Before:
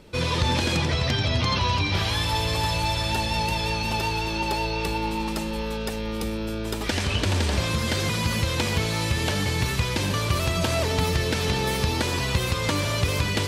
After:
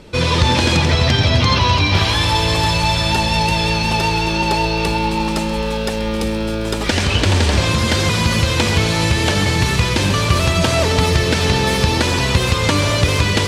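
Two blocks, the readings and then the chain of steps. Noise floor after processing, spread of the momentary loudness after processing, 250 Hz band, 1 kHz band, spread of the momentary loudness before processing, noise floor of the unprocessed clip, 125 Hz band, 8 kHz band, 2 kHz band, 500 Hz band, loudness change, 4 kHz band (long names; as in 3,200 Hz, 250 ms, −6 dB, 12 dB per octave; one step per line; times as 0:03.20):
−20 dBFS, 6 LU, +9.0 dB, +9.0 dB, 6 LU, −29 dBFS, +9.0 dB, +8.0 dB, +9.0 dB, +8.5 dB, +9.0 dB, +9.0 dB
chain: low-pass filter 10,000 Hz 12 dB per octave
feedback echo at a low word length 133 ms, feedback 80%, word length 9 bits, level −14 dB
level +8.5 dB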